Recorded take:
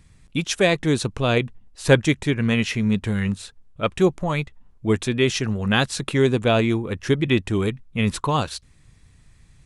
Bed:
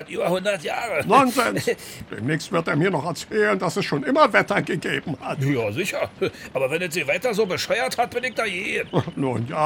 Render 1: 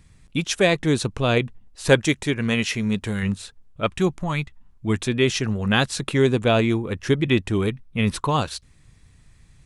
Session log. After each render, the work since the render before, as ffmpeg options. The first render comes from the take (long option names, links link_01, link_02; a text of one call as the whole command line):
ffmpeg -i in.wav -filter_complex "[0:a]asettb=1/sr,asplit=3[link_01][link_02][link_03];[link_01]atrim=end=1.894[link_04];[link_02]atrim=start=1.89:end=3.23,asetpts=PTS-STARTPTS,afade=type=in:duration=0.004:curve=qsin,afade=type=out:start_time=1.336:duration=0.004:curve=qsin,bass=frequency=250:gain=-4,treble=frequency=4000:gain=4[link_05];[link_03]atrim=start=3.226[link_06];[link_04][link_05]acrossfade=duration=0.004:curve1=hsin:curve2=qsin[link_07];[link_07][link_06]acrossfade=duration=0.004:curve1=qsin:curve2=hsin,asettb=1/sr,asplit=3[link_08][link_09][link_10];[link_08]atrim=end=3.864[link_11];[link_09]atrim=start=3.86:end=4.99,asetpts=PTS-STARTPTS,afade=type=in:duration=0.004:curve=qsin,afade=type=out:start_time=1.126:duration=0.004:curve=qsin,equalizer=frequency=500:width=1.5:gain=-8[link_12];[link_10]atrim=start=4.986[link_13];[link_11][link_12]acrossfade=duration=0.004:curve1=hsin:curve2=qsin[link_14];[link_14][link_13]acrossfade=duration=0.004:curve1=qsin:curve2=hsin,asettb=1/sr,asplit=3[link_15][link_16][link_17];[link_15]atrim=end=7.504[link_18];[link_16]atrim=start=7.5:end=8.16,asetpts=PTS-STARTPTS,afade=type=in:duration=0.004:curve=qsin,afade=type=out:start_time=0.656:duration=0.004:curve=qsin,bandreject=frequency=7200:width=5.3[link_19];[link_17]atrim=start=8.156[link_20];[link_18][link_19]acrossfade=duration=0.004:curve1=hsin:curve2=qsin[link_21];[link_21][link_20]acrossfade=duration=0.004:curve1=qsin:curve2=hsin" out.wav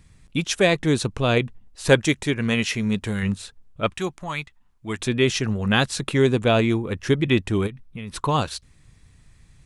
ffmpeg -i in.wav -filter_complex "[0:a]asettb=1/sr,asplit=3[link_01][link_02][link_03];[link_01]atrim=end=3.934[link_04];[link_02]atrim=start=3.93:end=4.99,asetpts=PTS-STARTPTS,afade=type=in:duration=0.004:curve=qsin,afade=type=out:start_time=1.056:duration=0.004:curve=qsin,lowshelf=frequency=390:gain=-11[link_05];[link_03]atrim=start=4.986[link_06];[link_04][link_05]acrossfade=duration=0.004:curve1=hsin:curve2=qsin[link_07];[link_07][link_06]acrossfade=duration=0.004:curve1=qsin:curve2=hsin,asplit=3[link_08][link_09][link_10];[link_08]afade=type=out:start_time=7.66:duration=0.02[link_11];[link_09]acompressor=threshold=-31dB:ratio=5:attack=3.2:release=140:knee=1:detection=peak,afade=type=in:start_time=7.66:duration=0.02,afade=type=out:start_time=8.15:duration=0.02[link_12];[link_10]afade=type=in:start_time=8.15:duration=0.02[link_13];[link_11][link_12][link_13]amix=inputs=3:normalize=0" out.wav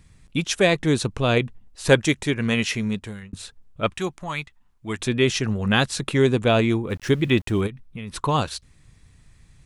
ffmpeg -i in.wav -filter_complex "[0:a]asettb=1/sr,asplit=3[link_01][link_02][link_03];[link_01]atrim=end=6.904[link_04];[link_02]atrim=start=6.9:end=7.61,asetpts=PTS-STARTPTS,afade=type=in:duration=0.004:curve=qsin,afade=type=out:start_time=0.706:duration=0.004:curve=qsin,aeval=exprs='val(0)*gte(abs(val(0)),0.0075)':channel_layout=same[link_05];[link_03]atrim=start=7.606[link_06];[link_04][link_05]acrossfade=duration=0.004:curve1=hsin:curve2=qsin[link_07];[link_07][link_06]acrossfade=duration=0.004:curve1=qsin:curve2=hsin,asplit=2[link_08][link_09];[link_08]atrim=end=3.33,asetpts=PTS-STARTPTS,afade=type=out:start_time=2.76:duration=0.57[link_10];[link_09]atrim=start=3.33,asetpts=PTS-STARTPTS,afade=type=in:duration=0.004:curve=hsin[link_11];[link_10][link_11]concat=n=2:v=0:a=1" out.wav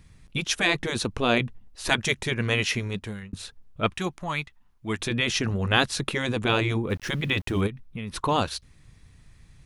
ffmpeg -i in.wav -af "equalizer=frequency=7800:width=3.1:gain=-5,afftfilt=real='re*lt(hypot(re,im),0.631)':imag='im*lt(hypot(re,im),0.631)':win_size=1024:overlap=0.75" out.wav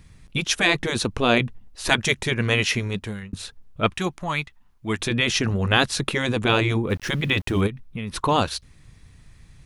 ffmpeg -i in.wav -af "volume=3.5dB,alimiter=limit=-3dB:level=0:latency=1" out.wav